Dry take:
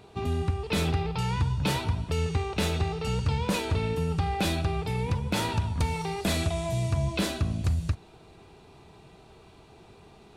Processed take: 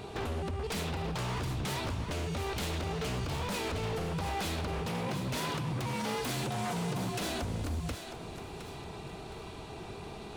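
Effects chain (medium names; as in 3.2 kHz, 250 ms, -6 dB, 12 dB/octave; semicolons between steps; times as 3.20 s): compression 12:1, threshold -36 dBFS, peak gain reduction 15 dB; wavefolder -38 dBFS; 4.86–7.21 s: frequency shift +49 Hz; thinning echo 715 ms, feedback 38%, high-pass 420 Hz, level -8 dB; trim +8.5 dB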